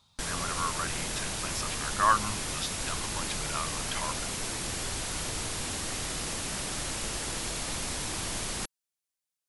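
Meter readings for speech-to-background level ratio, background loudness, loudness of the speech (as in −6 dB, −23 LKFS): −1.0 dB, −32.5 LKFS, −33.5 LKFS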